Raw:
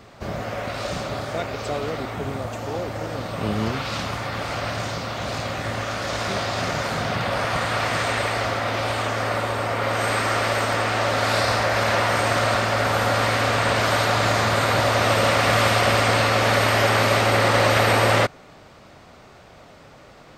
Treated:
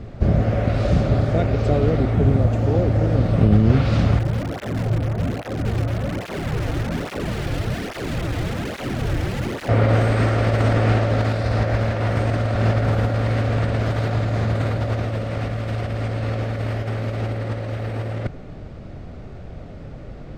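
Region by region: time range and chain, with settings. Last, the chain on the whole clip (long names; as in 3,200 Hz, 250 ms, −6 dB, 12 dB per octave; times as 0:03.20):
0:04.19–0:09.69: low-pass filter 1,200 Hz + wrap-around overflow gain 23 dB + through-zero flanger with one copy inverted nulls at 1.2 Hz, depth 5.3 ms
whole clip: parametric band 1,000 Hz −7.5 dB 0.76 octaves; compressor whose output falls as the input rises −25 dBFS, ratio −0.5; spectral tilt −4 dB per octave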